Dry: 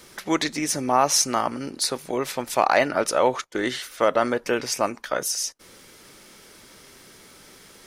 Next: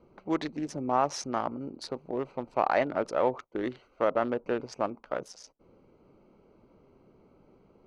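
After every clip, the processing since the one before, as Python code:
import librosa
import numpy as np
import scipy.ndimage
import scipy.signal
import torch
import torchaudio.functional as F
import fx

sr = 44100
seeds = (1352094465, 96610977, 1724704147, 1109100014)

y = fx.wiener(x, sr, points=25)
y = scipy.signal.sosfilt(scipy.signal.butter(2, 5400.0, 'lowpass', fs=sr, output='sos'), y)
y = fx.high_shelf(y, sr, hz=2400.0, db=-9.5)
y = F.gain(torch.from_numpy(y), -5.0).numpy()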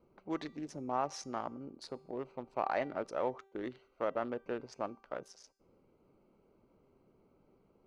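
y = fx.comb_fb(x, sr, f0_hz=390.0, decay_s=0.76, harmonics='all', damping=0.0, mix_pct=50)
y = F.gain(torch.from_numpy(y), -2.5).numpy()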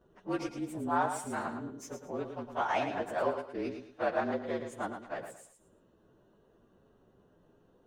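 y = fx.partial_stretch(x, sr, pct=112)
y = fx.echo_feedback(y, sr, ms=111, feedback_pct=28, wet_db=-8.0)
y = F.gain(torch.from_numpy(y), 6.5).numpy()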